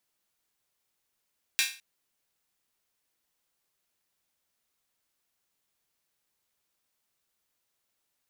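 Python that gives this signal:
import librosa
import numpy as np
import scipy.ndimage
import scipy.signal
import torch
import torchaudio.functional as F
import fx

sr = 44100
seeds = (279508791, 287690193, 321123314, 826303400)

y = fx.drum_hat_open(sr, length_s=0.21, from_hz=2200.0, decay_s=0.36)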